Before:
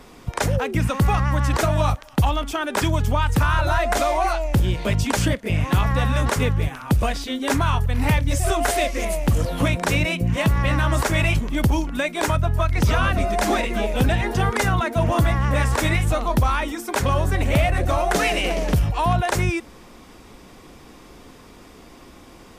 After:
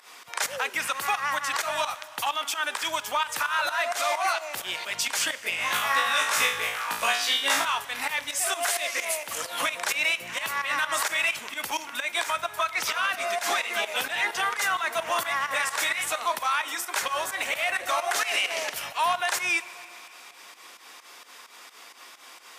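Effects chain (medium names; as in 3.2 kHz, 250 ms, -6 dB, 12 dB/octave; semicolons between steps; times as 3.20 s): high-pass 1.2 kHz 12 dB/octave; peak limiter -21.5 dBFS, peak gain reduction 10 dB; volume shaper 130 bpm, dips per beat 2, -16 dB, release 127 ms; 5.52–7.65 s: flutter echo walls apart 3.1 m, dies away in 0.5 s; plate-style reverb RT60 2.8 s, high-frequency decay 0.95×, DRR 15 dB; trim +5.5 dB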